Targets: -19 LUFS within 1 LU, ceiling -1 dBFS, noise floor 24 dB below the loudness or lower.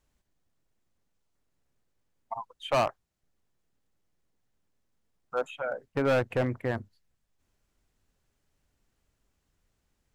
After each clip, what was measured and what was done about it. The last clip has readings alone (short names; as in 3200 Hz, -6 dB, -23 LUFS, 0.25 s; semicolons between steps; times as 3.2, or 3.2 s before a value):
clipped 0.5%; flat tops at -20.5 dBFS; loudness -30.5 LUFS; peak -20.5 dBFS; loudness target -19.0 LUFS
-> clip repair -20.5 dBFS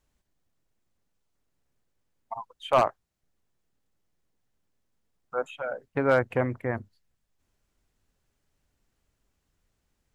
clipped 0.0%; loudness -28.0 LUFS; peak -11.5 dBFS; loudness target -19.0 LUFS
-> gain +9 dB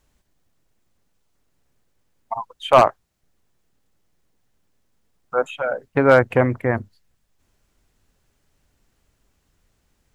loudness -19.5 LUFS; peak -2.5 dBFS; noise floor -69 dBFS